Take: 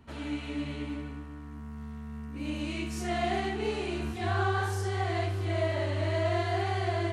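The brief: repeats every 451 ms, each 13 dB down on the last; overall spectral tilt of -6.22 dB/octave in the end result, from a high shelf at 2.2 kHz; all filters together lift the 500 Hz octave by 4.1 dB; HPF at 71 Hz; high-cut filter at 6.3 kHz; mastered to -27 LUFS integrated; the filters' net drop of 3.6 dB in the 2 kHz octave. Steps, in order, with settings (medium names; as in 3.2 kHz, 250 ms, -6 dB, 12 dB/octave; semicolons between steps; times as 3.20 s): high-pass 71 Hz; low-pass 6.3 kHz; peaking EQ 500 Hz +7 dB; peaking EQ 2 kHz -3 dB; treble shelf 2.2 kHz -4 dB; feedback delay 451 ms, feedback 22%, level -13 dB; trim +2.5 dB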